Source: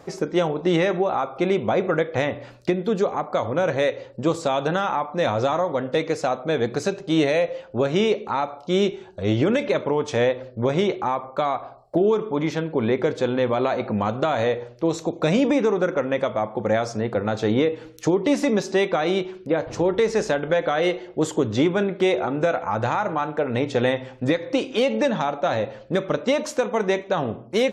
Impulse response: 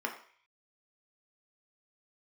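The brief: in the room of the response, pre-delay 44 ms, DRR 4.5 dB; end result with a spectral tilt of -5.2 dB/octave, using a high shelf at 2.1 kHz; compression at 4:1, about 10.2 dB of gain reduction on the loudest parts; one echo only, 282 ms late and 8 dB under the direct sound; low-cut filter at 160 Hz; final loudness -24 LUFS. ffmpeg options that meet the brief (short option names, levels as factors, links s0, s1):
-filter_complex "[0:a]highpass=160,highshelf=f=2100:g=-6.5,acompressor=threshold=0.0355:ratio=4,aecho=1:1:282:0.398,asplit=2[s0][s1];[1:a]atrim=start_sample=2205,adelay=44[s2];[s1][s2]afir=irnorm=-1:irlink=0,volume=0.335[s3];[s0][s3]amix=inputs=2:normalize=0,volume=2.11"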